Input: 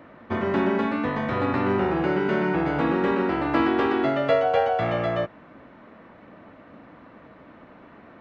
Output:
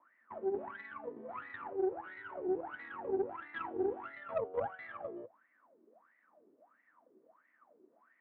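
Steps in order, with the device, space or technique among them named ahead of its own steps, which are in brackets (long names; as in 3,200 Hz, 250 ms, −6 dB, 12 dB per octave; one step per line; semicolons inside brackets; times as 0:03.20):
0:01.69–0:02.47: Chebyshev high-pass filter 270 Hz, order 10
wah-wah guitar rig (LFO wah 1.5 Hz 370–2,000 Hz, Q 17; tube saturation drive 26 dB, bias 0.75; loudspeaker in its box 100–3,900 Hz, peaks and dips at 110 Hz +5 dB, 230 Hz +8 dB, 320 Hz +6 dB)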